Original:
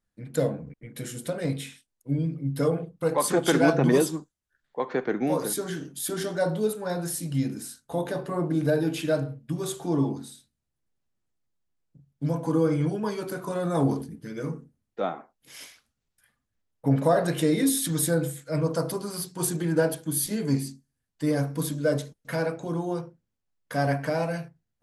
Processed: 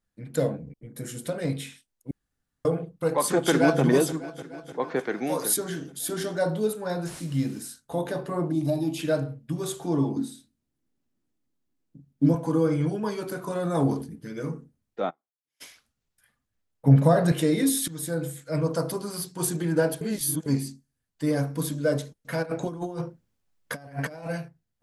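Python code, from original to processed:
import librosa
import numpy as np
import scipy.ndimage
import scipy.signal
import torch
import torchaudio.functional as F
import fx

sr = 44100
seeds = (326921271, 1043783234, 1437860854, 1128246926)

y = fx.peak_eq(x, sr, hz=fx.line((0.56, 1000.0), (1.07, 3500.0)), db=-14.0, octaves=0.94, at=(0.56, 1.07), fade=0.02)
y = fx.echo_throw(y, sr, start_s=3.33, length_s=0.49, ms=300, feedback_pct=70, wet_db=-15.0)
y = fx.tilt_eq(y, sr, slope=2.0, at=(4.99, 5.57))
y = fx.delta_mod(y, sr, bps=64000, step_db=-44.0, at=(7.06, 7.59))
y = fx.fixed_phaser(y, sr, hz=310.0, stages=8, at=(8.5, 8.98), fade=0.02)
y = fx.peak_eq(y, sr, hz=270.0, db=14.0, octaves=0.91, at=(10.16, 12.35))
y = fx.upward_expand(y, sr, threshold_db=-44.0, expansion=2.5, at=(15.09, 15.6), fade=0.02)
y = fx.peak_eq(y, sr, hz=150.0, db=9.5, octaves=0.77, at=(16.87, 17.32))
y = fx.over_compress(y, sr, threshold_db=-33.0, ratio=-0.5, at=(22.42, 24.28), fade=0.02)
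y = fx.edit(y, sr, fx.room_tone_fill(start_s=2.11, length_s=0.54),
    fx.fade_in_from(start_s=17.88, length_s=0.56, floor_db=-14.0),
    fx.reverse_span(start_s=20.01, length_s=0.45), tone=tone)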